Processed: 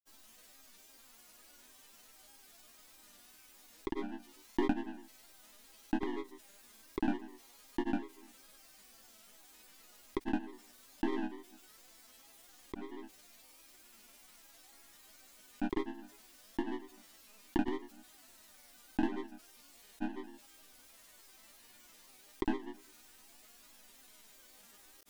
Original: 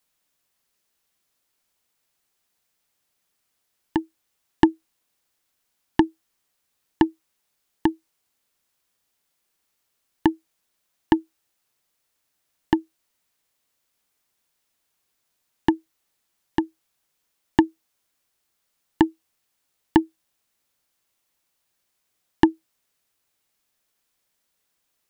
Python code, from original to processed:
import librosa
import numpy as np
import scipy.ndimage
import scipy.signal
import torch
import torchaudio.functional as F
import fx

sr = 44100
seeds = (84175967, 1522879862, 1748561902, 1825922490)

y = fx.low_shelf(x, sr, hz=290.0, db=6.0)
y = fx.resonator_bank(y, sr, root=58, chord='minor', decay_s=0.36)
y = fx.granulator(y, sr, seeds[0], grain_ms=100.0, per_s=20.0, spray_ms=100.0, spread_st=3)
y = fx.env_flatten(y, sr, amount_pct=50)
y = F.gain(torch.from_numpy(y), 3.0).numpy()